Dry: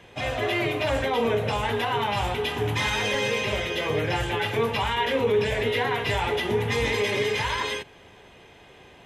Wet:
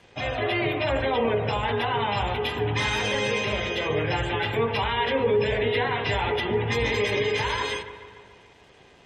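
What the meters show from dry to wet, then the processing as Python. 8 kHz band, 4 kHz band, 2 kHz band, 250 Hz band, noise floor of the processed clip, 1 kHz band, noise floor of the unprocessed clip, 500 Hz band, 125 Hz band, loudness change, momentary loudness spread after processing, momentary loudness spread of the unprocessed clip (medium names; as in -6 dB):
-3.0 dB, -0.5 dB, 0.0 dB, +0.5 dB, -54 dBFS, 0.0 dB, -51 dBFS, 0.0 dB, +0.5 dB, 0.0 dB, 3 LU, 3 LU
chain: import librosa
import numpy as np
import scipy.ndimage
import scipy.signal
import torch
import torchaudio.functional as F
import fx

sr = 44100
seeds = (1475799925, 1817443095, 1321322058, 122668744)

y = np.sign(x) * np.maximum(np.abs(x) - 10.0 ** (-55.5 / 20.0), 0.0)
y = fx.spec_gate(y, sr, threshold_db=-30, keep='strong')
y = fx.echo_wet_lowpass(y, sr, ms=144, feedback_pct=60, hz=2400.0, wet_db=-12.0)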